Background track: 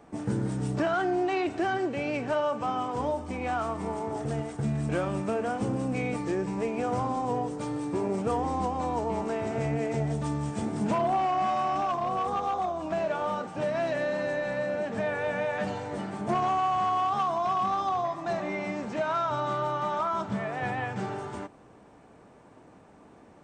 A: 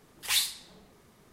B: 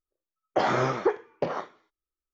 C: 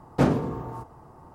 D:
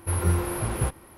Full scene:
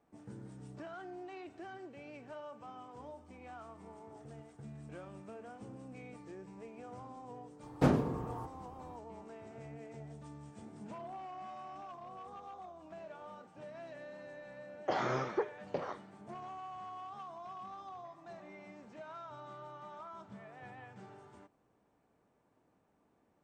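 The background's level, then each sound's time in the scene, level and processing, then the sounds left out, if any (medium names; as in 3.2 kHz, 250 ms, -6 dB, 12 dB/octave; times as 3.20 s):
background track -20 dB
7.63 s: add C -6.5 dB
14.32 s: add B -9.5 dB
not used: A, D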